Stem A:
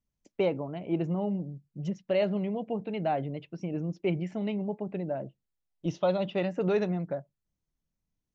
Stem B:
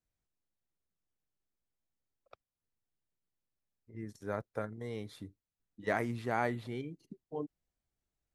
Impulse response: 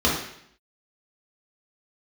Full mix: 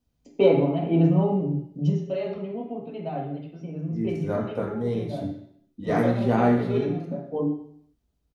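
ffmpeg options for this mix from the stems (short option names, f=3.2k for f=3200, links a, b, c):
-filter_complex "[0:a]aecho=1:1:7.3:0.4,volume=-4dB,afade=t=out:st=1.8:d=0.36:silence=0.298538,asplit=3[a][b][c];[b]volume=-7.5dB[d];[1:a]lowshelf=f=350:g=5.5,volume=2.5dB,asplit=2[e][f];[f]volume=-14.5dB[g];[c]apad=whole_len=367820[h];[e][h]sidechaincompress=threshold=-48dB:ratio=8:attack=9.1:release=120[i];[2:a]atrim=start_sample=2205[j];[d][g]amix=inputs=2:normalize=0[k];[k][j]afir=irnorm=-1:irlink=0[l];[a][i][l]amix=inputs=3:normalize=0"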